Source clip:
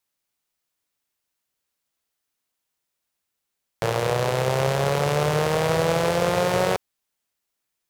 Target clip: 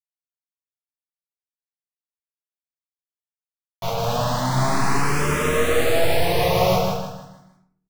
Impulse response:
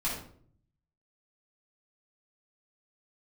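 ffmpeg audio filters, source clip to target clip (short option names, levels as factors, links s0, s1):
-filter_complex "[0:a]asplit=3[s0][s1][s2];[s0]afade=t=out:st=3.88:d=0.02[s3];[s1]agate=range=0.0224:threshold=0.112:ratio=3:detection=peak,afade=t=in:st=3.88:d=0.02,afade=t=out:st=4.52:d=0.02[s4];[s2]afade=t=in:st=4.52:d=0.02[s5];[s3][s4][s5]amix=inputs=3:normalize=0,acrusher=bits=3:mix=0:aa=0.000001,flanger=delay=7.3:depth=6.8:regen=74:speed=0.86:shape=triangular,aecho=1:1:156|312|468|624|780:0.631|0.233|0.0864|0.032|0.0118[s6];[1:a]atrim=start_sample=2205[s7];[s6][s7]afir=irnorm=-1:irlink=0,asplit=2[s8][s9];[s9]afreqshift=0.34[s10];[s8][s10]amix=inputs=2:normalize=1"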